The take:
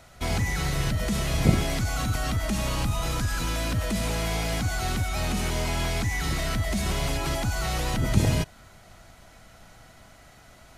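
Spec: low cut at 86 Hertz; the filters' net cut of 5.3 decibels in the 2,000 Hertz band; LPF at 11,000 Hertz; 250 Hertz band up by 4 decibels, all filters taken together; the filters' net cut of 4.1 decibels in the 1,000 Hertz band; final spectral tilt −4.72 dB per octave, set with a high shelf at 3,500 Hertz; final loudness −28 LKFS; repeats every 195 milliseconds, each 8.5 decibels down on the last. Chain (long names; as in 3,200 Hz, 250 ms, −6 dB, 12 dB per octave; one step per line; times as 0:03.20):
high-pass filter 86 Hz
low-pass filter 11,000 Hz
parametric band 250 Hz +6 dB
parametric band 1,000 Hz −5 dB
parametric band 2,000 Hz −6.5 dB
high-shelf EQ 3,500 Hz +4.5 dB
repeating echo 195 ms, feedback 38%, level −8.5 dB
level −1.5 dB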